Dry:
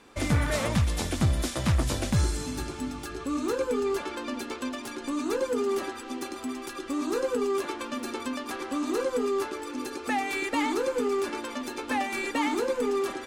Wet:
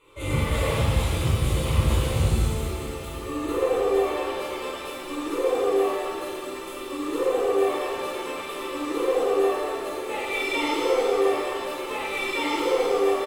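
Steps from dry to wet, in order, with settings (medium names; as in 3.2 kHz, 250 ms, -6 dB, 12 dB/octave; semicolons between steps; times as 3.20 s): harmony voices -5 st -11 dB; static phaser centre 1.1 kHz, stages 8; pitch-shifted reverb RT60 1.8 s, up +7 st, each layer -8 dB, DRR -9 dB; trim -5 dB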